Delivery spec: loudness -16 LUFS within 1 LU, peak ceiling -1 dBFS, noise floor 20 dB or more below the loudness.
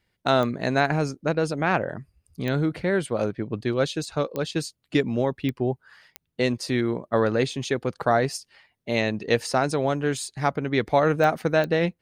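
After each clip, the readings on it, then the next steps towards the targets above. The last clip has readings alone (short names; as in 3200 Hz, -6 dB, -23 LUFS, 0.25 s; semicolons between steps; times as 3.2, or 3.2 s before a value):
clicks 7; loudness -25.0 LUFS; peak -7.5 dBFS; loudness target -16.0 LUFS
-> de-click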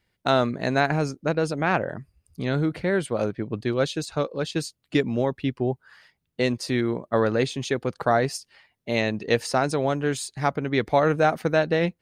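clicks 0; loudness -25.0 LUFS; peak -7.5 dBFS; loudness target -16.0 LUFS
-> gain +9 dB; limiter -1 dBFS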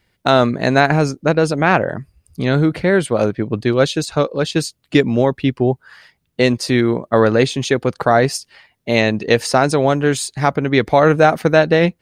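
loudness -16.0 LUFS; peak -1.0 dBFS; noise floor -68 dBFS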